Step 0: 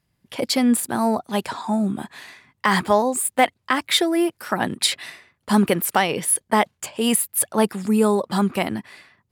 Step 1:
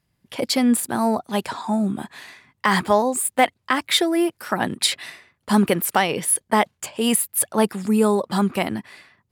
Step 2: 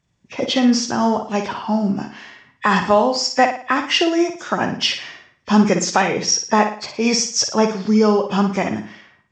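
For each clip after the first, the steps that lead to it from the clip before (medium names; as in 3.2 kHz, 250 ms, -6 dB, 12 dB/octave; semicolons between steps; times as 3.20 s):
no audible change
knee-point frequency compression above 1.7 kHz 1.5:1; flutter echo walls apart 9.7 m, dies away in 0.44 s; trim +2.5 dB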